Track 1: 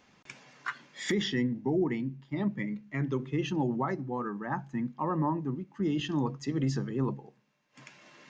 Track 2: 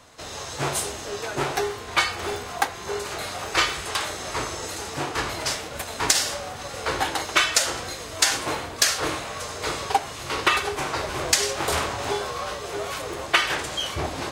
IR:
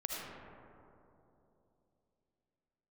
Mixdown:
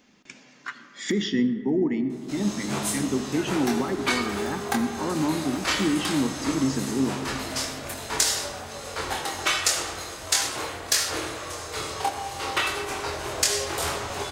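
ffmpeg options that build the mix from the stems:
-filter_complex "[0:a]equalizer=frequency=125:width_type=o:width=1:gain=-7,equalizer=frequency=250:width_type=o:width=1:gain=8,equalizer=frequency=1000:width_type=o:width=1:gain=-4,volume=-0.5dB,asplit=2[link_01][link_02];[link_02]volume=-10.5dB[link_03];[1:a]flanger=delay=22.5:depth=2.7:speed=0.15,adelay=2100,volume=-6dB,asplit=2[link_04][link_05];[link_05]volume=-3dB[link_06];[2:a]atrim=start_sample=2205[link_07];[link_03][link_06]amix=inputs=2:normalize=0[link_08];[link_08][link_07]afir=irnorm=-1:irlink=0[link_09];[link_01][link_04][link_09]amix=inputs=3:normalize=0,highshelf=frequency=4900:gain=6"

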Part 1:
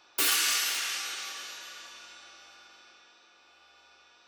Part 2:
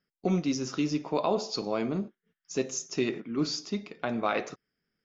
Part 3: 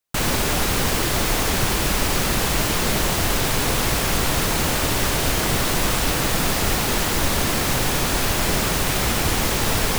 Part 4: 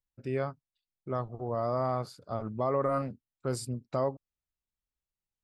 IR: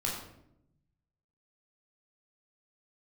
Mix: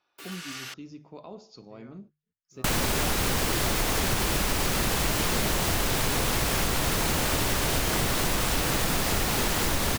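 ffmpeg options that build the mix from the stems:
-filter_complex "[0:a]dynaudnorm=framelen=110:gausssize=9:maxgain=11.5dB,highshelf=frequency=4300:gain=-11,volume=-14dB,asplit=3[link_01][link_02][link_03];[link_01]atrim=end=0.74,asetpts=PTS-STARTPTS,afade=type=out:start_time=0.736:duration=0.004:curve=hsin[link_04];[link_02]atrim=start=0.74:end=3.56,asetpts=PTS-STARTPTS,volume=0[link_05];[link_03]atrim=start=3.56,asetpts=PTS-STARTPTS,afade=type=in:duration=0.004:curve=hsin[link_06];[link_04][link_05][link_06]concat=n=3:v=0:a=1[link_07];[1:a]equalizer=frequency=83:width_type=o:width=2.1:gain=14.5,bandreject=frequency=50:width_type=h:width=6,bandreject=frequency=100:width_type=h:width=6,bandreject=frequency=150:width_type=h:width=6,volume=-18dB[link_08];[2:a]adelay=2500,volume=0.5dB[link_09];[3:a]lowpass=2200,equalizer=frequency=350:width=0.36:gain=-14.5,adelay=1450,volume=-12dB[link_10];[link_07][link_08][link_09][link_10]amix=inputs=4:normalize=0,acompressor=threshold=-22dB:ratio=6"

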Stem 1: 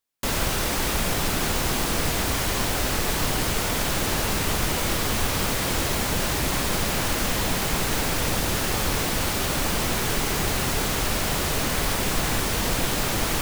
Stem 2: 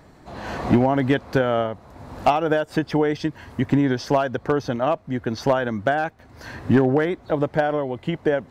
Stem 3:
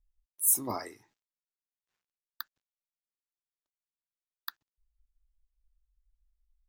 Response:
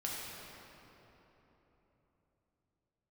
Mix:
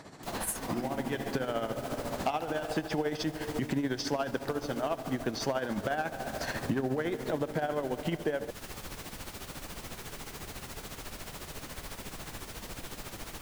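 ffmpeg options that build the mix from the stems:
-filter_complex "[0:a]volume=-15.5dB[link_01];[1:a]highpass=130,highshelf=frequency=3900:gain=9.5,volume=2dB,asplit=2[link_02][link_03];[link_03]volume=-12.5dB[link_04];[2:a]volume=-0.5dB,asplit=2[link_05][link_06];[link_06]apad=whole_len=375058[link_07];[link_02][link_07]sidechaincompress=threshold=-44dB:ratio=8:attack=31:release=876[link_08];[link_08][link_05]amix=inputs=2:normalize=0,lowpass=10000,alimiter=limit=-10.5dB:level=0:latency=1,volume=0dB[link_09];[3:a]atrim=start_sample=2205[link_10];[link_04][link_10]afir=irnorm=-1:irlink=0[link_11];[link_01][link_09][link_11]amix=inputs=3:normalize=0,tremolo=f=14:d=0.62,acompressor=threshold=-31dB:ratio=3"

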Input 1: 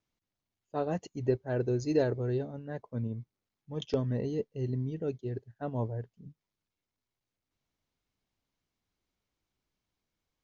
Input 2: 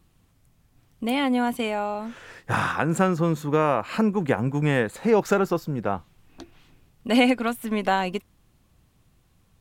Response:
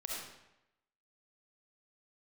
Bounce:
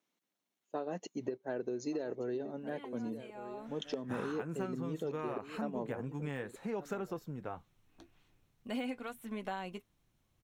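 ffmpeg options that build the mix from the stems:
-filter_complex "[0:a]highpass=frequency=200:width=0.5412,highpass=frequency=200:width=1.3066,acompressor=threshold=-31dB:ratio=6,volume=3dB,asplit=2[link_01][link_02];[link_02]volume=-16dB[link_03];[1:a]deesser=0.65,flanger=delay=4.8:depth=5.5:regen=-59:speed=0.38:shape=triangular,adelay=1600,volume=-10.5dB,afade=type=in:start_time=3.3:duration=0.36:silence=0.266073[link_04];[link_03]aecho=0:1:1174:1[link_05];[link_01][link_04][link_05]amix=inputs=3:normalize=0,bandreject=frequency=4800:width=9.9,acompressor=threshold=-36dB:ratio=2.5"

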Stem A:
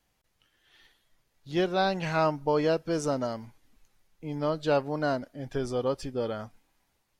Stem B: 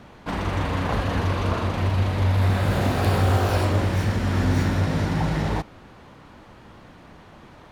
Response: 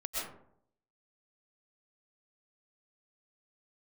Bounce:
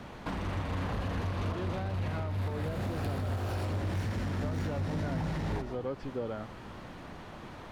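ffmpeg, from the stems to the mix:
-filter_complex "[0:a]lowpass=2500,volume=-1.5dB[link_01];[1:a]acompressor=threshold=-23dB:ratio=3,volume=-0.5dB,asplit=2[link_02][link_03];[link_03]volume=-12dB[link_04];[2:a]atrim=start_sample=2205[link_05];[link_04][link_05]afir=irnorm=-1:irlink=0[link_06];[link_01][link_02][link_06]amix=inputs=3:normalize=0,asoftclip=type=tanh:threshold=-21dB,acrossover=split=290[link_07][link_08];[link_08]acompressor=threshold=-34dB:ratio=2[link_09];[link_07][link_09]amix=inputs=2:normalize=0,alimiter=level_in=1dB:limit=-24dB:level=0:latency=1:release=496,volume=-1dB"

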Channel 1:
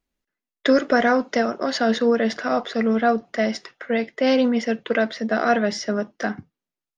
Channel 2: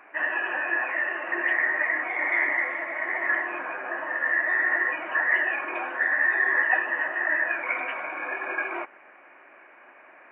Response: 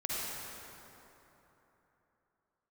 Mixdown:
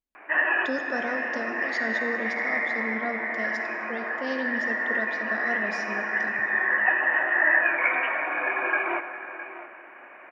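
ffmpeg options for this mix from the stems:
-filter_complex "[0:a]volume=-16dB,asplit=3[link_01][link_02][link_03];[link_02]volume=-8dB[link_04];[1:a]adelay=150,volume=2.5dB,asplit=3[link_05][link_06][link_07];[link_06]volume=-13.5dB[link_08];[link_07]volume=-12.5dB[link_09];[link_03]apad=whole_len=461527[link_10];[link_05][link_10]sidechaincompress=threshold=-46dB:ratio=8:attack=6.3:release=1020[link_11];[2:a]atrim=start_sample=2205[link_12];[link_04][link_08]amix=inputs=2:normalize=0[link_13];[link_13][link_12]afir=irnorm=-1:irlink=0[link_14];[link_09]aecho=0:1:660:1[link_15];[link_01][link_11][link_14][link_15]amix=inputs=4:normalize=0"

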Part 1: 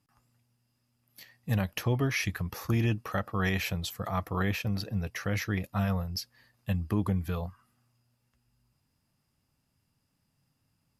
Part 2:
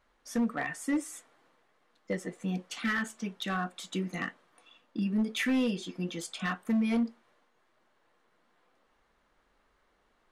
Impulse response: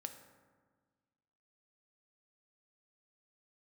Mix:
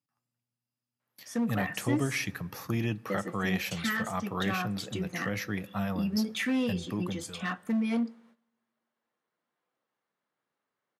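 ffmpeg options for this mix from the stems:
-filter_complex "[0:a]volume=-3.5dB,afade=type=out:start_time=6.71:duration=0.72:silence=0.237137,asplit=2[link_01][link_02];[link_02]volume=-7.5dB[link_03];[1:a]adelay=1000,volume=-2dB,asplit=2[link_04][link_05];[link_05]volume=-11.5dB[link_06];[2:a]atrim=start_sample=2205[link_07];[link_03][link_06]amix=inputs=2:normalize=0[link_08];[link_08][link_07]afir=irnorm=-1:irlink=0[link_09];[link_01][link_04][link_09]amix=inputs=3:normalize=0,agate=range=-14dB:threshold=-58dB:ratio=16:detection=peak,highpass=frequency=120:width=0.5412,highpass=frequency=120:width=1.3066"

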